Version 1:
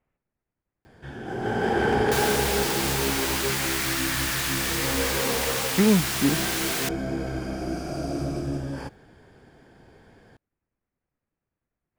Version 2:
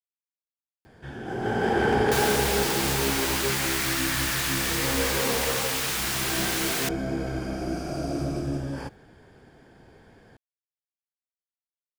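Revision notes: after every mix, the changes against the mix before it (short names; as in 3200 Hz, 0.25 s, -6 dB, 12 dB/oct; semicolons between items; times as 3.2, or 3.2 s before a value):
speech: muted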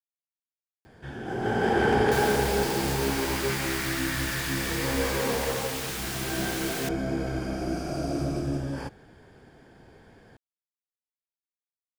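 second sound -6.5 dB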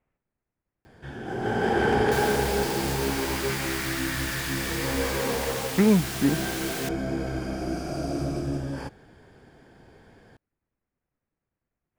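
speech: unmuted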